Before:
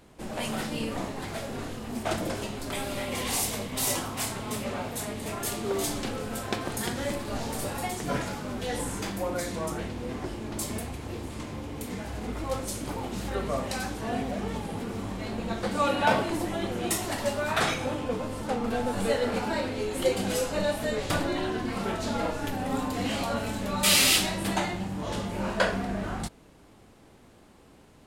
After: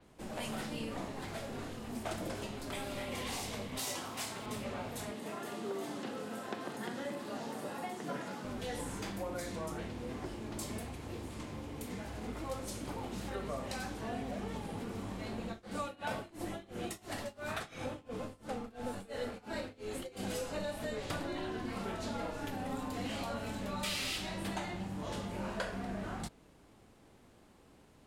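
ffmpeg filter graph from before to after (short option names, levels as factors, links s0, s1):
-filter_complex "[0:a]asettb=1/sr,asplit=3[s0][s1][s2];[s0]atrim=end=3.794[s3];[s1]atrim=start=3.79:end=4.46,asetpts=PTS-STARTPTS,afade=t=in:d=0.004:c=qsin,afade=t=out:st=0.666:d=0.004:c=qsin,highpass=f=220:p=1,highshelf=f=7000:g=12,acrusher=bits=7:mix=0:aa=0.5[s4];[s2]atrim=start=4.456[s5];[s3][s4]acrossfade=d=0.004:c1=hsin:c2=qsin[s6];[s6][s5]acrossfade=d=0.004:c1=qsin:c2=hsin,asettb=1/sr,asplit=3[s7][s8][s9];[s7]atrim=end=5.114[s10];[s8]atrim=start=5.11:end=8.44,asetpts=PTS-STARTPTS,afade=t=in:d=0.004:c=qsin,afade=t=out:st=3.326:d=0.004:c=qsin,highpass=f=160:w=0.5412,highpass=f=160:w=1.3066,bandreject=f=2300:w=13,acrossover=split=2800[s11][s12];[s12]acompressor=threshold=0.00631:ratio=4:attack=1:release=60[s13];[s11][s13]amix=inputs=2:normalize=0[s14];[s9]atrim=start=8.436[s15];[s10][s14]acrossfade=d=0.004:c1=hsin:c2=qsin[s16];[s16][s15]acrossfade=d=0.004:c1=qsin:c2=hsin,asettb=1/sr,asplit=3[s17][s18][s19];[s17]atrim=end=15.454[s20];[s18]atrim=start=15.45:end=20.23,asetpts=PTS-STARTPTS,afade=t=in:d=0.004:c=qsin,afade=t=out:st=4.776:d=0.004:c=qsin,tremolo=f=2.9:d=0.94,bandreject=f=940:w=12[s21];[s19]atrim=start=20.226[s22];[s20][s21]acrossfade=d=0.004:c1=hsin:c2=qsin[s23];[s23][s22]acrossfade=d=0.004:c1=qsin:c2=hsin,acrossover=split=96|6900[s24][s25][s26];[s24]acompressor=threshold=0.00891:ratio=4[s27];[s25]acompressor=threshold=0.0355:ratio=4[s28];[s26]acompressor=threshold=0.01:ratio=4[s29];[s27][s28][s29]amix=inputs=3:normalize=0,adynamicequalizer=threshold=0.00398:dfrequency=6000:dqfactor=0.7:tfrequency=6000:tqfactor=0.7:attack=5:release=100:ratio=0.375:range=2.5:mode=cutabove:tftype=highshelf,volume=0.473"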